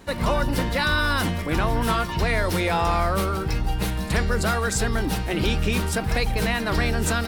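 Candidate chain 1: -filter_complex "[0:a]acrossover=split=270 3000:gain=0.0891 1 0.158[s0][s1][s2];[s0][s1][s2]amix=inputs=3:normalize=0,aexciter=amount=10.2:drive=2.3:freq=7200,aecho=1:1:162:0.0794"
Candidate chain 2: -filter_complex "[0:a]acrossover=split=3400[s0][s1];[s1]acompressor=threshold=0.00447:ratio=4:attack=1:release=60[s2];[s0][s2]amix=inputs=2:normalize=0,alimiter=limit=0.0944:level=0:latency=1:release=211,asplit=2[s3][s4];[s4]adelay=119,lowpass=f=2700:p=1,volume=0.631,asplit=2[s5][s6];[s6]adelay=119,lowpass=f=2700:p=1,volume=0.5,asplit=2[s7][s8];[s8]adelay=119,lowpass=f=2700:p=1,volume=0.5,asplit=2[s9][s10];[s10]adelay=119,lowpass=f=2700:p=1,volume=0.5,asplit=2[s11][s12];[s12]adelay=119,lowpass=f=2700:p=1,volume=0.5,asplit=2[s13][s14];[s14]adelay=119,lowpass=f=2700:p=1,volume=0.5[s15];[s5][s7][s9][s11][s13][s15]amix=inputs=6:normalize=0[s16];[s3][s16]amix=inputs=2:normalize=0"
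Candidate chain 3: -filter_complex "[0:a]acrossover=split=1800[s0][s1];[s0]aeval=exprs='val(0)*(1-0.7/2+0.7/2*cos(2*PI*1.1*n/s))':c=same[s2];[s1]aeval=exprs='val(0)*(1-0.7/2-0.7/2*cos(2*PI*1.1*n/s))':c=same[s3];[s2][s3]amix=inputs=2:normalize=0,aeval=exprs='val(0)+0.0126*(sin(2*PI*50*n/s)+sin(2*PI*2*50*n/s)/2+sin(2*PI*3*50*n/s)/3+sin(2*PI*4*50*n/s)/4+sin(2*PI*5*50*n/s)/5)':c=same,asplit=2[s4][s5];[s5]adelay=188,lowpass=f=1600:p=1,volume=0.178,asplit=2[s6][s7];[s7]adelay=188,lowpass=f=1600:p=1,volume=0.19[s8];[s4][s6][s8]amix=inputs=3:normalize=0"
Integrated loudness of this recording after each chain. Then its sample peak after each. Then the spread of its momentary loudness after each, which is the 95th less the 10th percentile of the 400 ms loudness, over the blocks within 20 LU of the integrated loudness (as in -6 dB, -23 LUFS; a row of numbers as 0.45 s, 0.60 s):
-26.5 LUFS, -28.5 LUFS, -26.5 LUFS; -11.5 dBFS, -15.5 dBFS, -11.0 dBFS; 6 LU, 2 LU, 6 LU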